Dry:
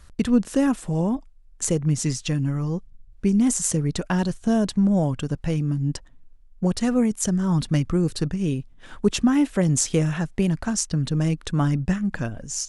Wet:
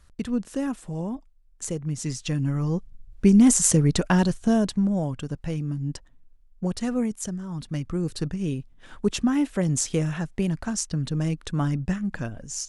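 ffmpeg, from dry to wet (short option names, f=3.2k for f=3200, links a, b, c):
-af "volume=13.5dB,afade=t=in:st=1.94:d=1.33:silence=0.266073,afade=t=out:st=3.95:d=1:silence=0.354813,afade=t=out:st=7.05:d=0.44:silence=0.398107,afade=t=in:st=7.49:d=0.75:silence=0.334965"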